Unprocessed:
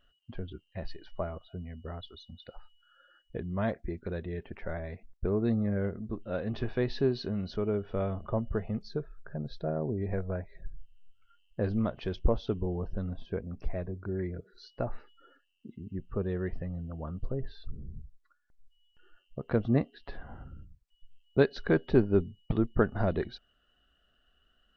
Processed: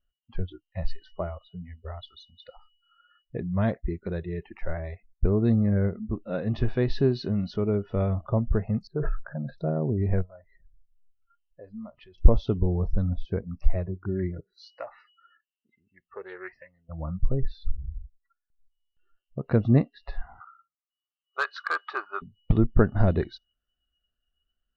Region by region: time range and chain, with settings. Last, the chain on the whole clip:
8.87–9.58 s: low-pass 2 kHz 24 dB/octave + bass shelf 110 Hz -10.5 dB + decay stretcher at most 40 dB/s
10.22–12.18 s: distance through air 270 m + compression 2:1, threshold -50 dBFS
14.53–16.89 s: high-pass 1 kHz 6 dB/octave + peaking EQ 1.9 kHz +6 dB 0.64 oct + loudspeaker Doppler distortion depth 0.17 ms
20.40–22.22 s: resonant high-pass 1.2 kHz, resonance Q 12 + hard clipper -20.5 dBFS + distance through air 56 m
whole clip: bass shelf 160 Hz +11 dB; spectral noise reduction 21 dB; trim +2 dB

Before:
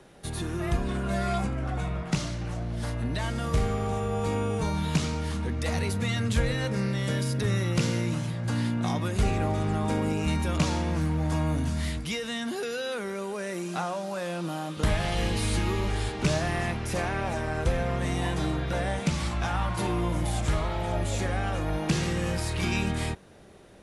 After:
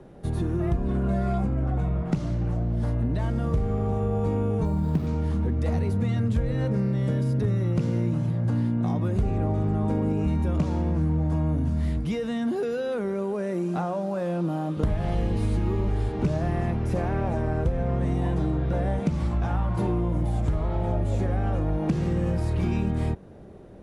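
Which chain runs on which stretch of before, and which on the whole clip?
4.65–5.07 s: peaking EQ 2.6 kHz -10.5 dB 1.2 oct + sample-rate reducer 8.5 kHz
whole clip: tilt shelf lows +10 dB, about 1.2 kHz; compression 4:1, threshold -20 dBFS; trim -1.5 dB

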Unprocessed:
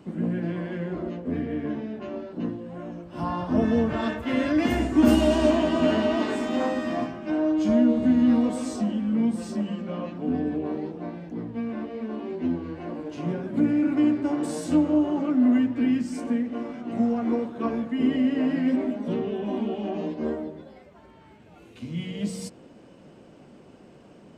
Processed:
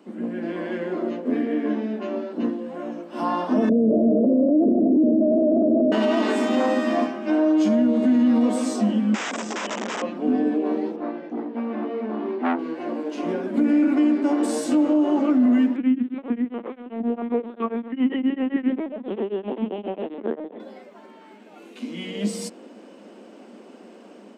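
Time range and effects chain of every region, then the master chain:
3.69–5.92 s: steep low-pass 650 Hz 96 dB/octave + doubling 35 ms -12 dB + level flattener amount 100%
9.14–10.02 s: integer overflow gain 28.5 dB + steep low-pass 7.9 kHz 96 dB/octave + peaking EQ 4.3 kHz -12.5 dB 0.26 oct
10.96–12.59 s: distance through air 170 m + doubling 20 ms -6 dB + transformer saturation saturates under 1 kHz
15.76–20.60 s: LPC vocoder at 8 kHz pitch kept + tremolo of two beating tones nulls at 7.5 Hz
whole clip: elliptic high-pass 210 Hz; peak limiter -18.5 dBFS; level rider gain up to 6.5 dB

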